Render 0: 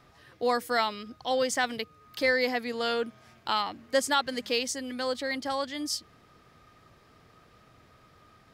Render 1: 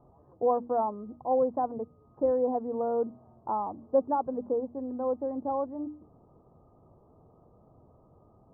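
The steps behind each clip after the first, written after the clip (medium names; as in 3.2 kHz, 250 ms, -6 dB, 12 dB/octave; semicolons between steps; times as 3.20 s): steep low-pass 1 kHz 48 dB/octave; hum notches 60/120/180/240/300 Hz; trim +2 dB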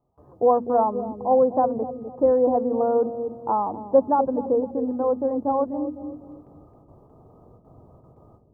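gate with hold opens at -50 dBFS; on a send: feedback echo behind a low-pass 251 ms, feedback 35%, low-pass 480 Hz, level -6 dB; on the sum: trim +7.5 dB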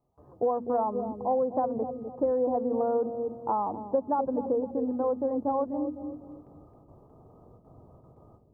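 compression 6:1, threshold -20 dBFS, peak gain reduction 8.5 dB; trim -3 dB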